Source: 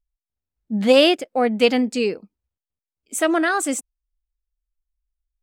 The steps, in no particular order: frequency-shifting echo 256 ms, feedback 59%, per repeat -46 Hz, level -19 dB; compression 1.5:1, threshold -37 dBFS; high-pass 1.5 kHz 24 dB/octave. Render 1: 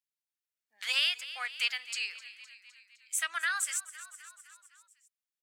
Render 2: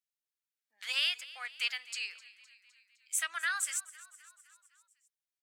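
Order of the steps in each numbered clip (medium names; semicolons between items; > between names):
frequency-shifting echo > high-pass > compression; compression > frequency-shifting echo > high-pass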